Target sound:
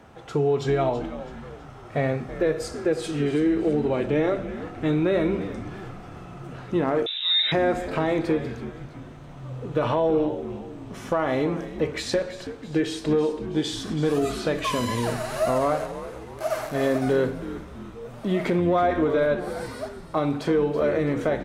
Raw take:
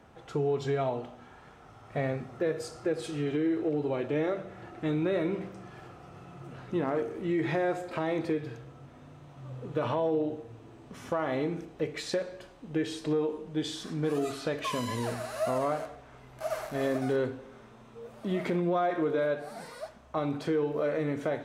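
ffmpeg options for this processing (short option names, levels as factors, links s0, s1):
-filter_complex "[0:a]asplit=6[s0][s1][s2][s3][s4][s5];[s1]adelay=328,afreqshift=-96,volume=0.224[s6];[s2]adelay=656,afreqshift=-192,volume=0.11[s7];[s3]adelay=984,afreqshift=-288,volume=0.0537[s8];[s4]adelay=1312,afreqshift=-384,volume=0.0263[s9];[s5]adelay=1640,afreqshift=-480,volume=0.0129[s10];[s0][s6][s7][s8][s9][s10]amix=inputs=6:normalize=0,asettb=1/sr,asplit=3[s11][s12][s13];[s11]atrim=end=7.064[s14];[s12]atrim=start=7.06:end=7.52,asetpts=PTS-STARTPTS,afade=t=in:d=0.004:c=qsin,afade=t=out:st=0.456:d=0.004:c=qsin,lowpass=f=3400:t=q:w=0.5098,lowpass=f=3400:t=q:w=0.6013,lowpass=f=3400:t=q:w=0.9,lowpass=f=3400:t=q:w=2.563,afreqshift=-4000[s15];[s13]atrim=start=7.516[s16];[s14][s15]acrossfade=d=0.004:c1=hsin:c2=qsin[s17];[s17][s16]acrossfade=d=0.004:c1=qsin:c2=hsin,volume=2.11"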